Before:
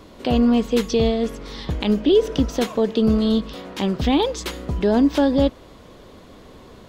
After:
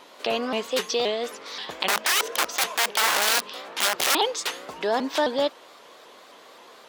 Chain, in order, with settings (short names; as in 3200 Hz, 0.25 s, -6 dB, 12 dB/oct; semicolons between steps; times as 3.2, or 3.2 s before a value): 1.88–4.15 wrapped overs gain 17.5 dB; HPF 710 Hz 12 dB/oct; shaped vibrato saw up 3.8 Hz, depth 160 cents; gain +2.5 dB